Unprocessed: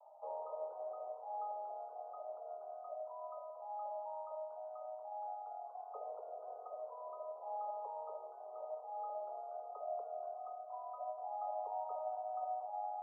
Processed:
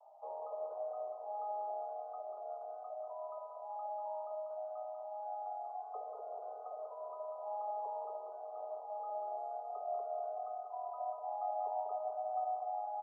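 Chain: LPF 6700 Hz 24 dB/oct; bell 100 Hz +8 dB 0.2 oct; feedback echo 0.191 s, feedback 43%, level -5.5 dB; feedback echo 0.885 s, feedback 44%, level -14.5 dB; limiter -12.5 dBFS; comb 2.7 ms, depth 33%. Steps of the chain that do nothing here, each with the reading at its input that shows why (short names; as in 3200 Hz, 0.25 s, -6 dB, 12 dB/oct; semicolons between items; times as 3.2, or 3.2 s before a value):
LPF 6700 Hz: input band ends at 1300 Hz; bell 100 Hz: input band starts at 380 Hz; limiter -12.5 dBFS: input peak -28.5 dBFS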